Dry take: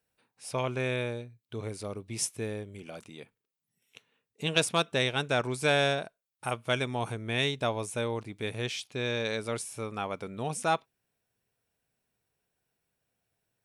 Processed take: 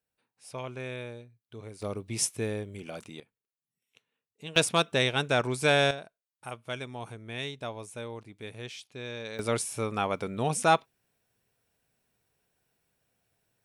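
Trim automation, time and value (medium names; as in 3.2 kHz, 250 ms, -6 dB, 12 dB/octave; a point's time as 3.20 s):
-7 dB
from 1.82 s +3 dB
from 3.20 s -10 dB
from 4.56 s +2 dB
from 5.91 s -7.5 dB
from 9.39 s +5 dB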